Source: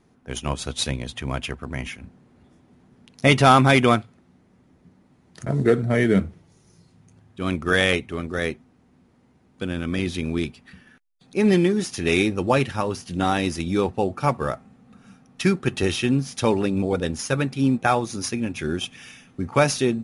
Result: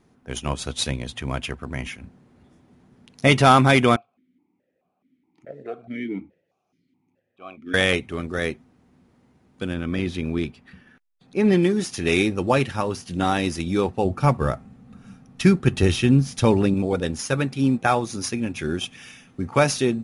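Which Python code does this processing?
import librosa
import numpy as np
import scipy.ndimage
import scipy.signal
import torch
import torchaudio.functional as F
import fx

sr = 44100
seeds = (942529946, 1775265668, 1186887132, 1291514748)

y = fx.vowel_held(x, sr, hz=4.7, at=(3.96, 7.74))
y = fx.high_shelf(y, sr, hz=4700.0, db=-9.5, at=(9.74, 11.63))
y = fx.low_shelf(y, sr, hz=170.0, db=11.0, at=(14.05, 16.74))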